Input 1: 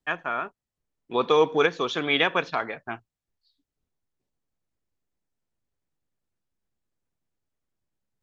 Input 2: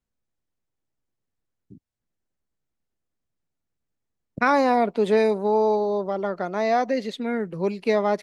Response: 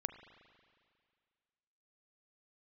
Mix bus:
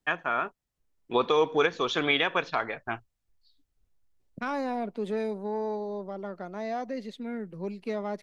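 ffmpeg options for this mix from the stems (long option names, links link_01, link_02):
-filter_complex "[0:a]asubboost=boost=5:cutoff=79,volume=2dB[link_01];[1:a]equalizer=frequency=210:width=1.5:gain=4.5,acontrast=87,volume=-18.5dB[link_02];[link_01][link_02]amix=inputs=2:normalize=0,alimiter=limit=-12.5dB:level=0:latency=1:release=439"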